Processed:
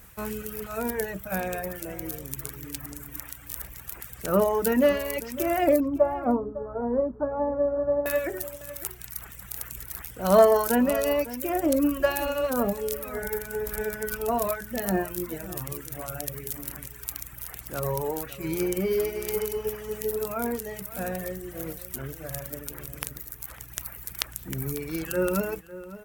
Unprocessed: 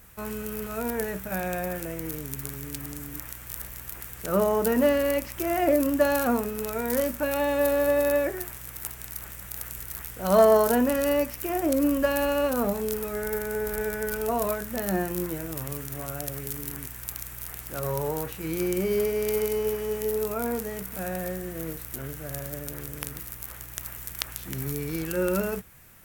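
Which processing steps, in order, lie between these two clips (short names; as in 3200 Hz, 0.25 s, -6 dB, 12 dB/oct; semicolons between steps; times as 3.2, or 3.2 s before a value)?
5.8–8.06 inverse Chebyshev low-pass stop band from 2800 Hz, stop band 50 dB; reverb removal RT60 1.8 s; outdoor echo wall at 95 m, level -15 dB; gain +2 dB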